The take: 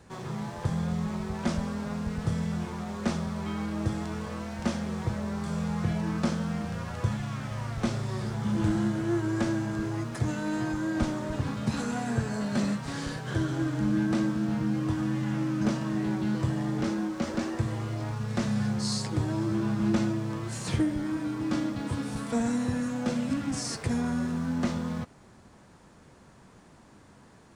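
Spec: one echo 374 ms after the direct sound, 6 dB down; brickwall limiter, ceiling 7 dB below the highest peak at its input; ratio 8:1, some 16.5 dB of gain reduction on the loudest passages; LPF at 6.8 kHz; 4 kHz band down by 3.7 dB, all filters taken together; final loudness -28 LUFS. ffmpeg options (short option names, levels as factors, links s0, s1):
-af "lowpass=6800,equalizer=f=4000:t=o:g=-4,acompressor=threshold=0.01:ratio=8,alimiter=level_in=3.76:limit=0.0631:level=0:latency=1,volume=0.266,aecho=1:1:374:0.501,volume=5.96"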